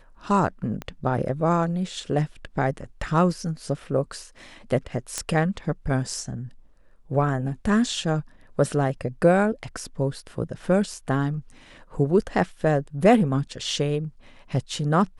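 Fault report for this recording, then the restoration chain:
0.82 s: pop -19 dBFS
5.18 s: pop -12 dBFS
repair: de-click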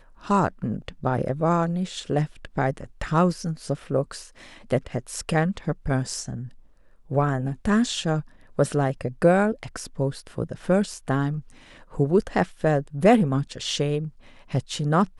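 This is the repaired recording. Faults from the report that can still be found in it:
0.82 s: pop

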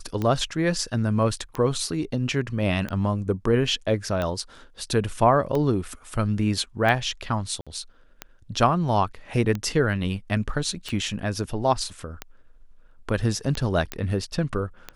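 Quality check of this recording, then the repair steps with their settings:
tick 45 rpm -15 dBFS
7.61–7.67 s: dropout 56 ms
13.92 s: pop -11 dBFS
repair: de-click; interpolate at 7.61 s, 56 ms

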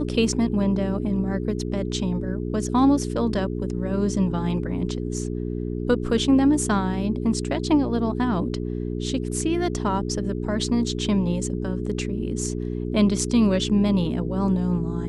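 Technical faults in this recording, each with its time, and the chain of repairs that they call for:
hum 60 Hz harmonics 7 -28 dBFS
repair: de-hum 60 Hz, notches 7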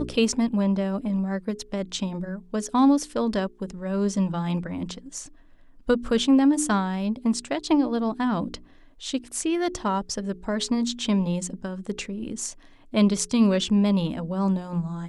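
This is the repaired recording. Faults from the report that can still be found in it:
nothing left

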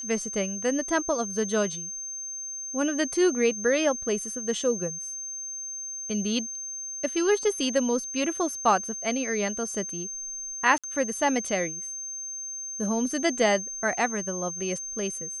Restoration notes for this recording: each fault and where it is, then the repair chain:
whine 6.3 kHz -33 dBFS
10.78–10.84 s: dropout 56 ms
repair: band-stop 6.3 kHz, Q 30; interpolate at 10.78 s, 56 ms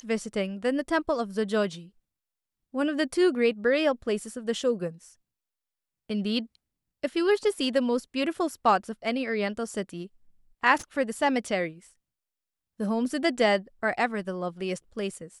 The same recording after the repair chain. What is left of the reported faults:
nothing left

